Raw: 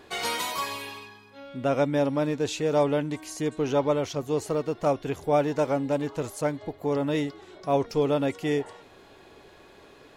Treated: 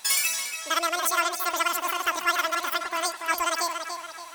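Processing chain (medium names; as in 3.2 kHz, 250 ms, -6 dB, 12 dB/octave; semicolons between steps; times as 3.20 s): tilt shelf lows -8.5 dB; tape echo 667 ms, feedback 51%, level -5.5 dB, low-pass 2.5 kHz; speed mistake 33 rpm record played at 78 rpm; peaking EQ 130 Hz -8 dB 1.3 oct; trim +2.5 dB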